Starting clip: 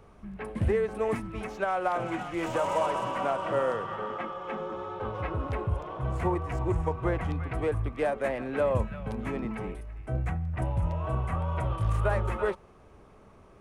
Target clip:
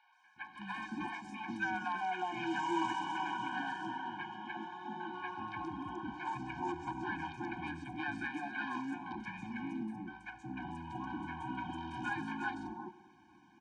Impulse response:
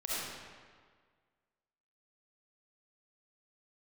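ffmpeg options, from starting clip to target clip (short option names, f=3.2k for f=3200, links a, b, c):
-filter_complex "[0:a]bandreject=f=1k:w=24,acrossover=split=600|4100[a][b][c];[a]aeval=exprs='0.0376*(abs(mod(val(0)/0.0376+3,4)-2)-1)':c=same[d];[d][b][c]amix=inputs=3:normalize=0,highpass=310,equalizer=f=430:t=q:w=4:g=-6,equalizer=f=650:t=q:w=4:g=-7,equalizer=f=2k:t=q:w=4:g=-3,lowpass=f=6.6k:w=0.5412,lowpass=f=6.6k:w=1.3066,acrossover=split=840|4600[e][f][g];[g]adelay=130[h];[e]adelay=360[i];[i][f][h]amix=inputs=3:normalize=0,asplit=2[j][k];[1:a]atrim=start_sample=2205,afade=t=out:st=0.32:d=0.01,atrim=end_sample=14553[l];[k][l]afir=irnorm=-1:irlink=0,volume=-18dB[m];[j][m]amix=inputs=2:normalize=0,afftfilt=real='re*eq(mod(floor(b*sr/1024/360),2),0)':imag='im*eq(mod(floor(b*sr/1024/360),2),0)':win_size=1024:overlap=0.75,volume=1.5dB"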